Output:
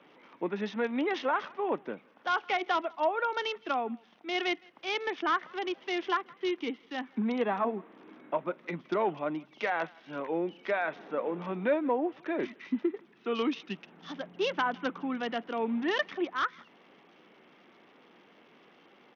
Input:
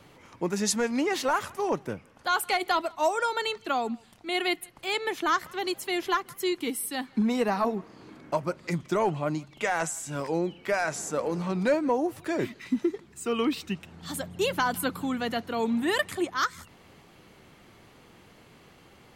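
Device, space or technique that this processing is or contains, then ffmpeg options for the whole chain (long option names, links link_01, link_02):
Bluetooth headset: -af "highpass=frequency=210:width=0.5412,highpass=frequency=210:width=1.3066,aresample=8000,aresample=44100,volume=-3dB" -ar 48000 -c:a sbc -b:a 64k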